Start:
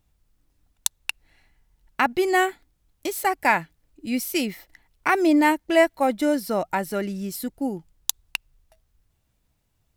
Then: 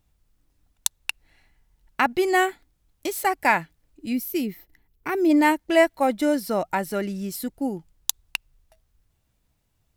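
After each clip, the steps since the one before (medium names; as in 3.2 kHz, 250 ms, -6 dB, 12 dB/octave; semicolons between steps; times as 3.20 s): time-frequency box 4.13–5.30 s, 460–11000 Hz -9 dB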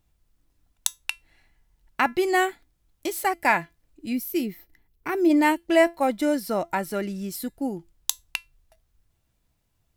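feedback comb 340 Hz, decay 0.2 s, harmonics all, mix 50%; trim +4 dB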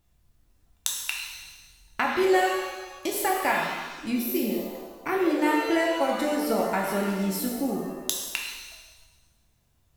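compression 2.5:1, threshold -26 dBFS, peak gain reduction 9.5 dB; pitch-shifted reverb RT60 1.2 s, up +7 st, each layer -8 dB, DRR -1 dB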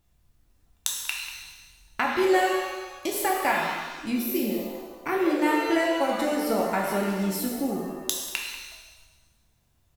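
speakerphone echo 190 ms, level -11 dB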